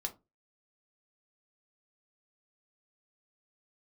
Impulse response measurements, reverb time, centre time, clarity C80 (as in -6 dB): 0.25 s, 7 ms, 25.5 dB